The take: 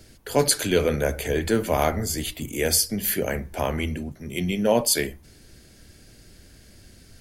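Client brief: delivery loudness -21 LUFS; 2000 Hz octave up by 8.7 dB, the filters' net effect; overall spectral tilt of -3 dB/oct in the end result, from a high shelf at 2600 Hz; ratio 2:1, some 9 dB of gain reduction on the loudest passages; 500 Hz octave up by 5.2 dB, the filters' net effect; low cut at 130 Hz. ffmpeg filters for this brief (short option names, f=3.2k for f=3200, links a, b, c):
-af "highpass=130,equalizer=f=500:t=o:g=5.5,equalizer=f=2k:t=o:g=8.5,highshelf=f=2.6k:g=4,acompressor=threshold=-27dB:ratio=2,volume=5.5dB"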